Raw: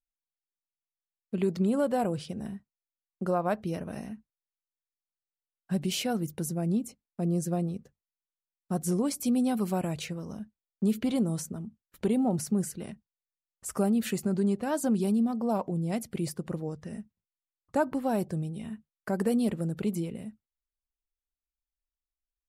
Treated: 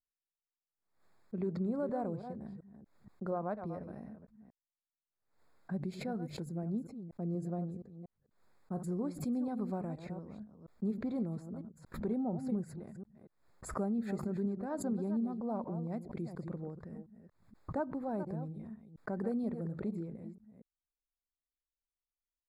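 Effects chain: reverse delay 0.237 s, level -10 dB; running mean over 15 samples; backwards sustainer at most 100 dB/s; gain -8.5 dB

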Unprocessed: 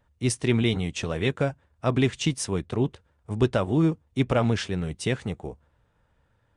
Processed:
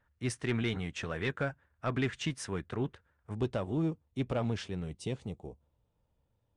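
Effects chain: bell 1600 Hz +10 dB 0.87 oct, from 3.35 s -3.5 dB, from 4.99 s -15 dB; soft clip -13 dBFS, distortion -19 dB; high shelf 6500 Hz -5.5 dB; gain -8.5 dB

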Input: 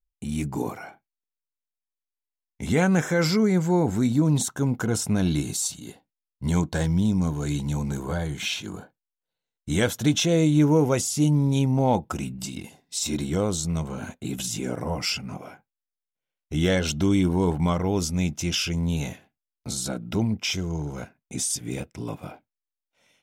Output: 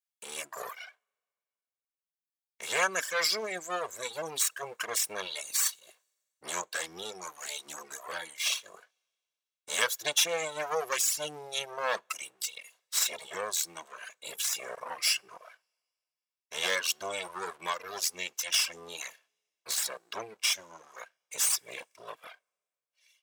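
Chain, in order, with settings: minimum comb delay 1.8 ms; Bessel high-pass 1300 Hz, order 2; two-slope reverb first 0.27 s, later 2.2 s, from -19 dB, DRR 19.5 dB; reverb removal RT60 1.9 s; gain +3 dB

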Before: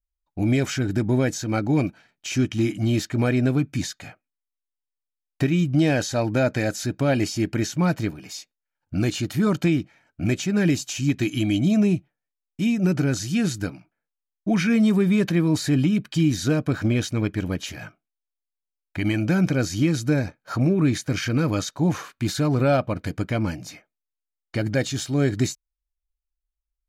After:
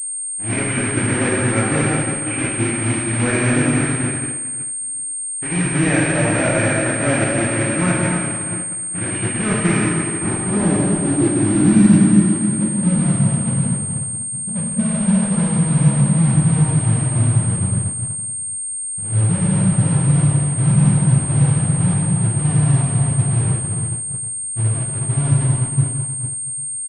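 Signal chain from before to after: block floating point 3-bit; low-pass sweep 2100 Hz -> 140 Hz, 9.62–12.16; in parallel at -10 dB: wrapped overs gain 18.5 dB; on the sum: echo 0.335 s -23 dB; plate-style reverb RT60 4.6 s, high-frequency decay 0.75×, DRR -7 dB; expander -13 dBFS; pulse-width modulation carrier 8600 Hz; gain -4.5 dB

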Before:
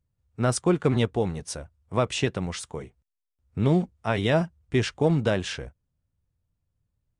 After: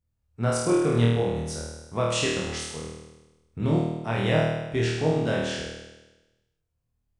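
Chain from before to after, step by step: 2.08–2.58 high shelf 3700 Hz +7.5 dB; flutter echo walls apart 4.4 m, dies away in 1.1 s; gain -5.5 dB

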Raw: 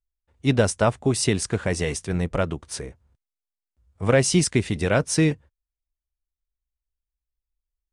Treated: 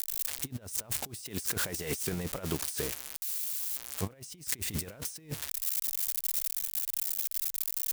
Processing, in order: switching spikes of -20 dBFS; 1.25–4.06 low shelf 140 Hz -8 dB; negative-ratio compressor -29 dBFS, ratio -0.5; gain -5 dB

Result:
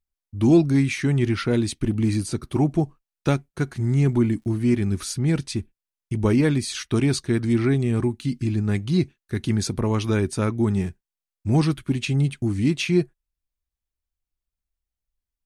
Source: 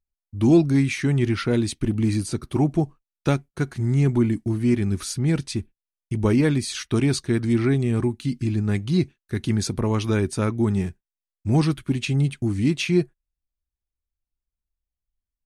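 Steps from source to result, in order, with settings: 3.78–4.91 crackle 62/s -49 dBFS

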